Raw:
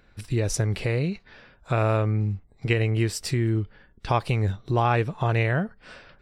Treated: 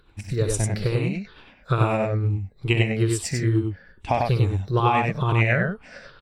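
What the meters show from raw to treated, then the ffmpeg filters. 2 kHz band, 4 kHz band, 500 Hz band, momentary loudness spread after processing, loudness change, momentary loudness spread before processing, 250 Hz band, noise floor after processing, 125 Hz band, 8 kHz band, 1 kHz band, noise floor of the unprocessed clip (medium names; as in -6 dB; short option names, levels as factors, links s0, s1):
+3.5 dB, +2.0 dB, +1.5 dB, 9 LU, +2.0 dB, 8 LU, +2.5 dB, -55 dBFS, +2.0 dB, +3.0 dB, +3.0 dB, -58 dBFS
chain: -af "afftfilt=real='re*pow(10,13/40*sin(2*PI*(0.62*log(max(b,1)*sr/1024/100)/log(2)-(-2.3)*(pts-256)/sr)))':imag='im*pow(10,13/40*sin(2*PI*(0.62*log(max(b,1)*sr/1024/100)/log(2)-(-2.3)*(pts-256)/sr)))':win_size=1024:overlap=0.75,tremolo=f=9.2:d=0.39,aecho=1:1:64.14|96.21:0.282|0.708"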